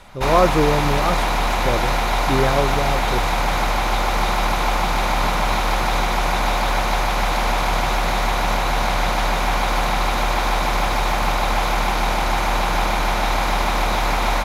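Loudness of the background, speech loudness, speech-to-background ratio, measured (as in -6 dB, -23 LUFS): -20.0 LUFS, -22.5 LUFS, -2.5 dB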